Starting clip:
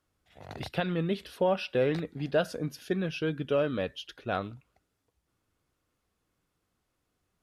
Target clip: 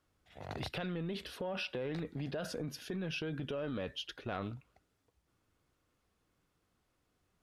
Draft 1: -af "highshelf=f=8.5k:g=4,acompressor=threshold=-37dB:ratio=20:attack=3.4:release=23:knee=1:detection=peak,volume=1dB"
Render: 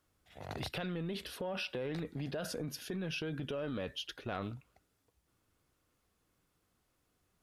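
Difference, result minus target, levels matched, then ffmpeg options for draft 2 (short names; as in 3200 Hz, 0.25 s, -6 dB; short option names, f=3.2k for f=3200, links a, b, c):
8000 Hz band +3.5 dB
-af "highshelf=f=8.5k:g=-5.5,acompressor=threshold=-37dB:ratio=20:attack=3.4:release=23:knee=1:detection=peak,volume=1dB"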